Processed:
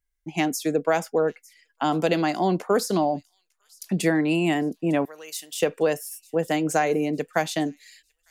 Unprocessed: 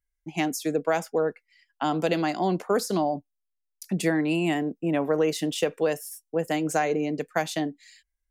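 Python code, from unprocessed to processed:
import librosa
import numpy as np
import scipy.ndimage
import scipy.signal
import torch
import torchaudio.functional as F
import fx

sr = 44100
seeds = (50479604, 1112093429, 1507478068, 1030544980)

y = fx.differentiator(x, sr, at=(5.05, 5.6))
y = fx.echo_wet_highpass(y, sr, ms=903, feedback_pct=41, hz=4100.0, wet_db=-20.5)
y = F.gain(torch.from_numpy(y), 2.5).numpy()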